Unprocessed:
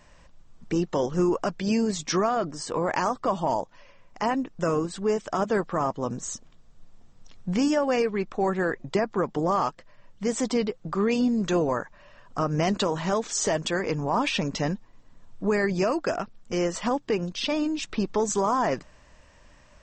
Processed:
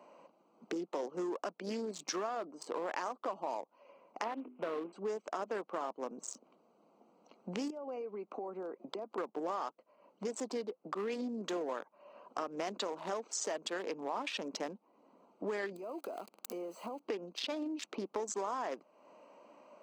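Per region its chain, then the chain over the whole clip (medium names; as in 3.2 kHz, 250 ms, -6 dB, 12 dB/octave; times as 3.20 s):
4.24–4.93 s: CVSD coder 16 kbps + hum notches 50/100/150/200/250/300/350/400 Hz
7.70–9.18 s: compression 3:1, threshold -37 dBFS + high-pass 120 Hz
15.76–17.00 s: zero-crossing glitches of -21 dBFS + band-stop 5.7 kHz, Q 9.5 + compression 10:1, threshold -33 dBFS
whole clip: local Wiener filter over 25 samples; Bessel high-pass 400 Hz, order 8; compression 3:1, threshold -48 dBFS; trim +7 dB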